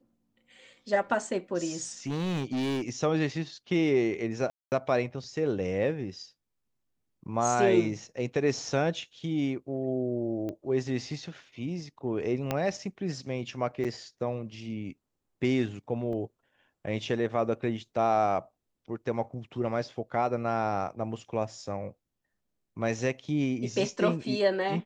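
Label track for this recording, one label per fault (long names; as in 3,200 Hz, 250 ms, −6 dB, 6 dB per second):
2.070000	2.890000	clipping −27 dBFS
4.500000	4.720000	drop-out 219 ms
10.490000	10.490000	click −24 dBFS
12.510000	12.510000	click −14 dBFS
13.840000	13.850000	drop-out 6.8 ms
16.130000	16.130000	drop-out 2.5 ms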